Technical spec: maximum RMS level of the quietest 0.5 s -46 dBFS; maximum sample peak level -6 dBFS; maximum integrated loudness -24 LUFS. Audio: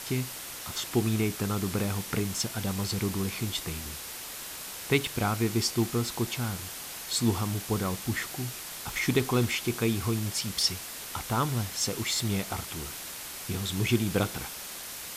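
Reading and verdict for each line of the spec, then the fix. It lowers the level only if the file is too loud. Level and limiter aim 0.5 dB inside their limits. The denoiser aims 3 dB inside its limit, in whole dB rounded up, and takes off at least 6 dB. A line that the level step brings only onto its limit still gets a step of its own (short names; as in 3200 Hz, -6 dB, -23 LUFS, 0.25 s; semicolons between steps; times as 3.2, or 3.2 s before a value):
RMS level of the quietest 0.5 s -40 dBFS: fail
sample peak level -10.5 dBFS: OK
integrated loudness -30.0 LUFS: OK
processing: denoiser 9 dB, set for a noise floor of -40 dBFS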